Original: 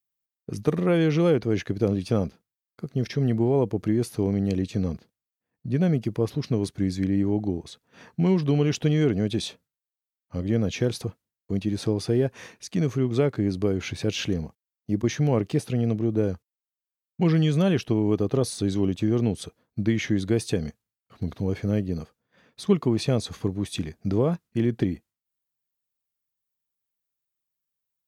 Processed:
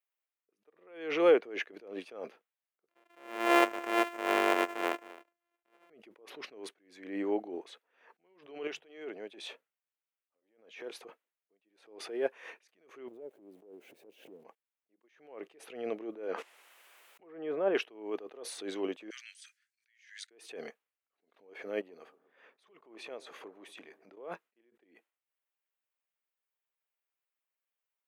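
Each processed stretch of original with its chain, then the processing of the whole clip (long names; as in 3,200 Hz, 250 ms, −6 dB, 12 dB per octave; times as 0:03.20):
0:02.89–0:05.90: samples sorted by size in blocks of 128 samples + single-tap delay 264 ms −20 dB
0:08.67–0:11.00: mains-hum notches 50/100/150 Hz + downward compressor 2.5 to 1, threshold −35 dBFS
0:13.08–0:14.45: spike at every zero crossing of −21 dBFS + drawn EQ curve 170 Hz 0 dB, 630 Hz −8 dB, 1,200 Hz −27 dB + downward compressor 5 to 1, threshold −35 dBFS
0:16.26–0:17.75: treble cut that deepens with the level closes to 1,000 Hz, closed at −18 dBFS + low-shelf EQ 120 Hz −11 dB + level that may fall only so fast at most 27 dB per second
0:19.10–0:20.31: Butterworth high-pass 1,600 Hz 48 dB per octave + flat-topped bell 6,500 Hz +12 dB 1.3 octaves
0:21.81–0:24.17: downward compressor 3 to 1, threshold −39 dBFS + bucket-brigade delay 119 ms, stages 1,024, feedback 71%, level −18 dB
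whole clip: high-pass filter 400 Hz 24 dB per octave; high shelf with overshoot 3,500 Hz −9.5 dB, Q 1.5; level that may rise only so fast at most 100 dB per second; level +1 dB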